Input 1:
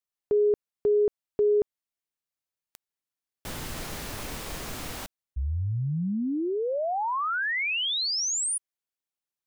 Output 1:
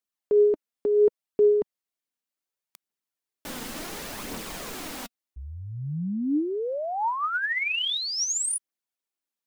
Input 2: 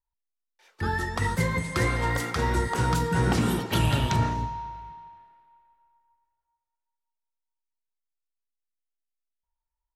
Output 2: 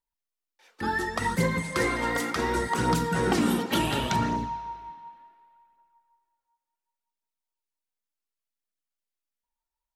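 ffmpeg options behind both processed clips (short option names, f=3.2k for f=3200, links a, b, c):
-af "lowshelf=f=150:t=q:w=1.5:g=-9.5,aphaser=in_gain=1:out_gain=1:delay=4.3:decay=0.37:speed=0.69:type=triangular"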